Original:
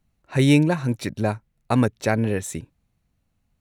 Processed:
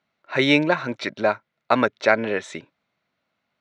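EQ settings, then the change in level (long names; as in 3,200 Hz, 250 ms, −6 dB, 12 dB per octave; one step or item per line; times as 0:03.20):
loudspeaker in its box 210–5,000 Hz, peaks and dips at 380 Hz +3 dB, 610 Hz +9 dB, 1,000 Hz +5 dB, 1,400 Hz +9 dB, 2,100 Hz +7 dB, 3,500 Hz +4 dB
spectral tilt +1.5 dB per octave
0.0 dB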